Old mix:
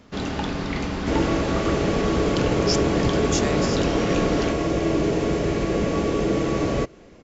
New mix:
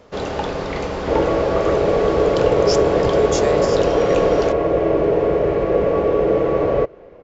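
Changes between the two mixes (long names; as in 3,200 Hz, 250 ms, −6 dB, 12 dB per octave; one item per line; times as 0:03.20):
second sound: add low-pass filter 2,300 Hz 12 dB per octave
master: add octave-band graphic EQ 250/500/1,000 Hz −7/+12/+3 dB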